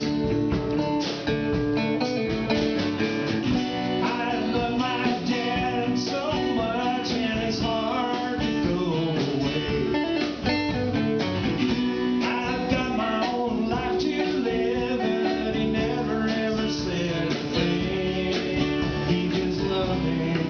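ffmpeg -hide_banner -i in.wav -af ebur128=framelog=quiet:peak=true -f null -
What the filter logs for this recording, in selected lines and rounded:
Integrated loudness:
  I:         -25.2 LUFS
  Threshold: -35.2 LUFS
Loudness range:
  LRA:         0.4 LU
  Threshold: -45.2 LUFS
  LRA low:   -25.4 LUFS
  LRA high:  -25.0 LUFS
True peak:
  Peak:      -10.1 dBFS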